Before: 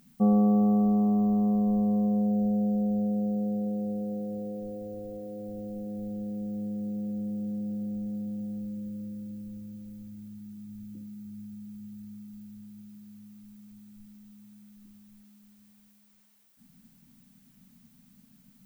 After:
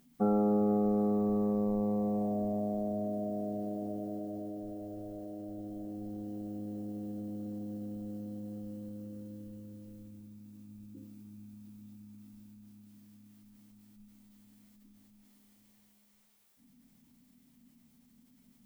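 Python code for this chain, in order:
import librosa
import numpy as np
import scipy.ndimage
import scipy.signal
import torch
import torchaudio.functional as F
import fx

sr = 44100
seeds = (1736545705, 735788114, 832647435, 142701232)

y = fx.rev_double_slope(x, sr, seeds[0], early_s=0.33, late_s=4.5, knee_db=-18, drr_db=5.0)
y = fx.formant_shift(y, sr, semitones=3)
y = y * 10.0 ** (-5.5 / 20.0)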